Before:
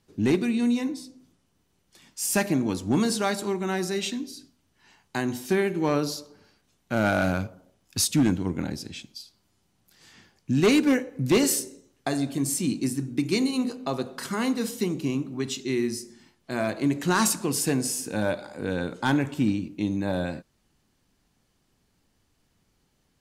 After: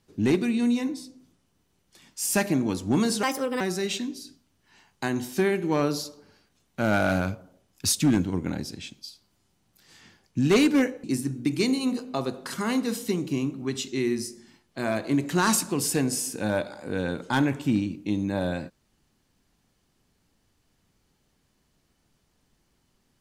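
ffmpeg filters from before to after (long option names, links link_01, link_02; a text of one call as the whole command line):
ffmpeg -i in.wav -filter_complex "[0:a]asplit=4[link_01][link_02][link_03][link_04];[link_01]atrim=end=3.234[link_05];[link_02]atrim=start=3.23:end=3.73,asetpts=PTS-STARTPTS,asetrate=58653,aresample=44100[link_06];[link_03]atrim=start=3.726:end=11.162[link_07];[link_04]atrim=start=12.758[link_08];[link_05][link_06]acrossfade=duration=0.004:curve1=hsin:curve2=hsin[link_09];[link_09][link_07]acrossfade=duration=0.004:curve1=hsin:curve2=hsin[link_10];[link_10][link_08]acrossfade=duration=0.004:curve1=hsin:curve2=hsin" out.wav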